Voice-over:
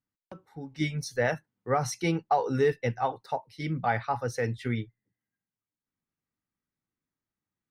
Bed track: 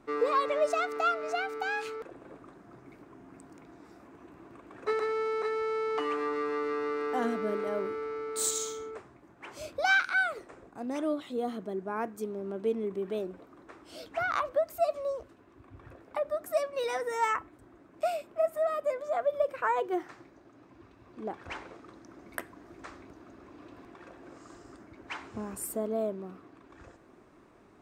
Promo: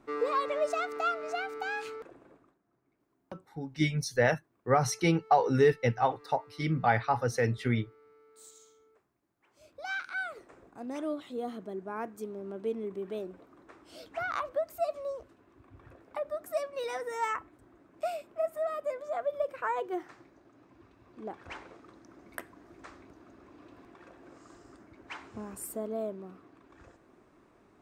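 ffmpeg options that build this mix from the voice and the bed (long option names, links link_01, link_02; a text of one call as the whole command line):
ffmpeg -i stem1.wav -i stem2.wav -filter_complex "[0:a]adelay=3000,volume=1.5dB[link_01];[1:a]volume=18dB,afade=type=out:start_time=1.93:duration=0.65:silence=0.0841395,afade=type=in:start_time=9.49:duration=1.24:silence=0.0944061[link_02];[link_01][link_02]amix=inputs=2:normalize=0" out.wav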